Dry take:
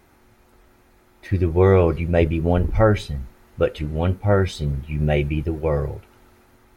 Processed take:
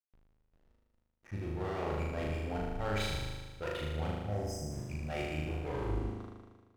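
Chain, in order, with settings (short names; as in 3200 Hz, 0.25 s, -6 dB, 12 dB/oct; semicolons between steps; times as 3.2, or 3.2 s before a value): tape stop at the end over 1.20 s; low-pass opened by the level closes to 1800 Hz, open at -16.5 dBFS; resonant low shelf 610 Hz -6 dB, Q 1.5; reverse; compressor 6:1, threshold -36 dBFS, peak gain reduction 20 dB; reverse; backlash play -44 dBFS; spectral delete 4.18–4.71, 880–4800 Hz; one-sided clip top -37.5 dBFS; on a send: flutter echo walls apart 6.6 m, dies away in 1.4 s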